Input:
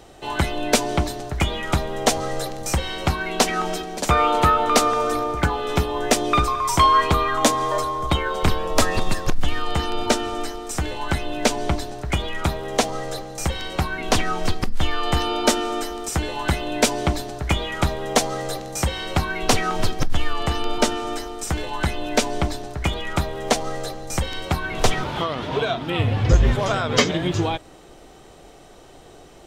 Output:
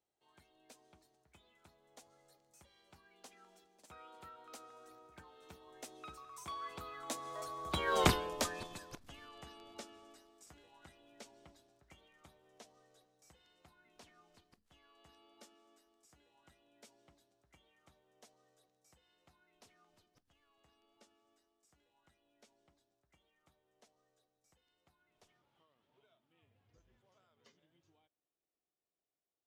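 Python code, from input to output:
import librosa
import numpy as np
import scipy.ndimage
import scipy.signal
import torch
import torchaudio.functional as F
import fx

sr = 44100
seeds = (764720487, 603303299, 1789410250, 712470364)

y = fx.doppler_pass(x, sr, speed_mps=16, closest_m=1.3, pass_at_s=8.01)
y = fx.highpass(y, sr, hz=140.0, slope=6)
y = fx.high_shelf(y, sr, hz=5000.0, db=5.5)
y = F.gain(torch.from_numpy(y), -4.0).numpy()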